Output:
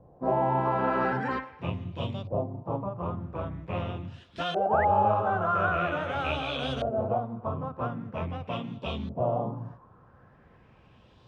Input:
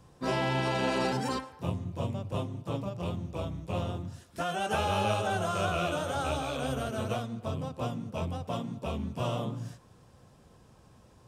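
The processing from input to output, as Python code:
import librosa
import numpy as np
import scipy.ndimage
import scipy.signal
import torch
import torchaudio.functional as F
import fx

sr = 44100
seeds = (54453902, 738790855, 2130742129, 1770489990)

y = fx.filter_lfo_lowpass(x, sr, shape='saw_up', hz=0.44, low_hz=610.0, high_hz=4000.0, q=2.9)
y = fx.spec_paint(y, sr, seeds[0], shape='rise', start_s=4.56, length_s=0.29, low_hz=360.0, high_hz=2200.0, level_db=-32.0)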